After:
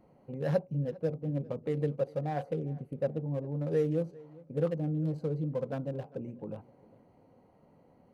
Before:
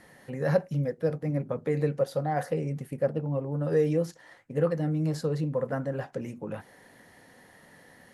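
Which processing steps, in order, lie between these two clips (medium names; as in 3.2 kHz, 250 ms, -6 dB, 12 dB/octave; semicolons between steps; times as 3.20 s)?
local Wiener filter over 25 samples; dynamic bell 1.3 kHz, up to -4 dB, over -44 dBFS, Q 1; on a send: filtered feedback delay 401 ms, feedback 35%, low-pass 4 kHz, level -22 dB; on the sum: trim -3.5 dB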